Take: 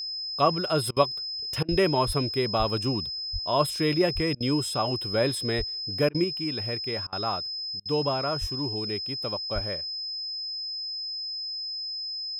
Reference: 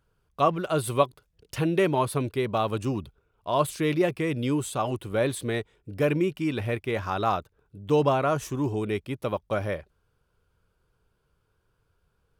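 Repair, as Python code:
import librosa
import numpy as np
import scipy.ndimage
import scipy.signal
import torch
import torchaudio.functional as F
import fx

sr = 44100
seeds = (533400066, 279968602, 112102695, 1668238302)

y = fx.notch(x, sr, hz=5100.0, q=30.0)
y = fx.fix_deplosive(y, sr, at_s=(1.7, 2.06, 2.58, 3.32, 4.14, 5.57, 8.4, 9.54))
y = fx.fix_interpolate(y, sr, at_s=(0.91, 1.63, 4.35, 6.09, 7.07, 7.8), length_ms=54.0)
y = fx.gain(y, sr, db=fx.steps((0.0, 0.0), (6.24, 5.0)))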